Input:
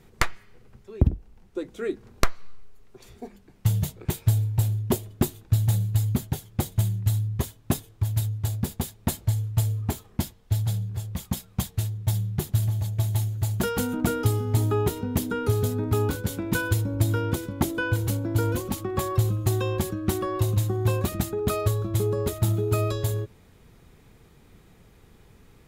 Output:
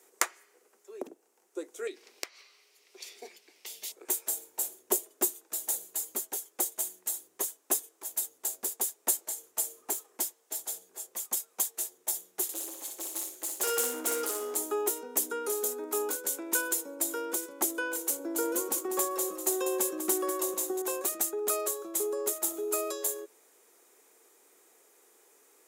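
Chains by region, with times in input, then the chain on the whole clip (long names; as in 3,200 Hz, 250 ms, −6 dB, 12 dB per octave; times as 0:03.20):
0:01.87–0:03.92: flat-topped bell 3,300 Hz +14.5 dB + downward compressor 4 to 1, threshold −31 dBFS
0:12.43–0:14.56: parametric band 3,000 Hz +6 dB 1.7 octaves + hard clipping −25 dBFS + repeating echo 60 ms, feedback 27%, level −4.5 dB
0:18.19–0:20.82: low-shelf EQ 350 Hz +7.5 dB + repeating echo 195 ms, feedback 18%, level −9.5 dB
whole clip: Butterworth high-pass 340 Hz 36 dB per octave; high shelf with overshoot 5,300 Hz +10 dB, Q 1.5; level −4.5 dB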